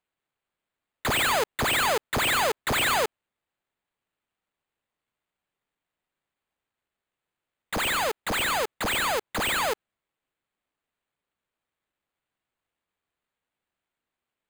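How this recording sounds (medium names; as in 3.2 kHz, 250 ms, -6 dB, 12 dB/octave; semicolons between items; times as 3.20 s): aliases and images of a low sample rate 5.6 kHz, jitter 0%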